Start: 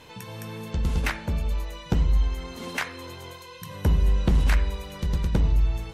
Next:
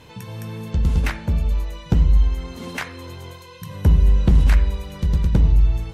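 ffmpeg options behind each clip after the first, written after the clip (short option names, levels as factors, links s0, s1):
-af "equalizer=f=86:w=0.36:g=7.5"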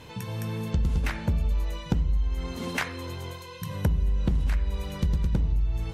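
-af "acompressor=threshold=0.0891:ratio=10"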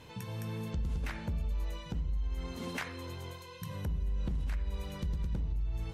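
-af "alimiter=limit=0.0891:level=0:latency=1:release=59,volume=0.473"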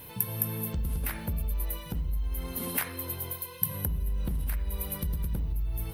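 -af "aexciter=amount=14.3:drive=7.7:freq=10000,volume=1.41"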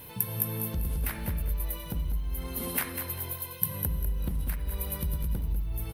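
-af "aecho=1:1:197|394|591:0.355|0.106|0.0319"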